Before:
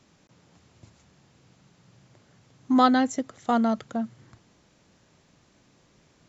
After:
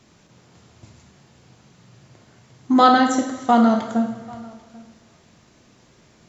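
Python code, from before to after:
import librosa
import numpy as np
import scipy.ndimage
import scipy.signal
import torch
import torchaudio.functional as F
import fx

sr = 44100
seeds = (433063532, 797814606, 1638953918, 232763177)

y = x + 10.0 ** (-23.0 / 20.0) * np.pad(x, (int(791 * sr / 1000.0), 0))[:len(x)]
y = fx.rev_double_slope(y, sr, seeds[0], early_s=0.92, late_s=2.6, knee_db=-18, drr_db=2.0)
y = F.gain(torch.from_numpy(y), 5.0).numpy()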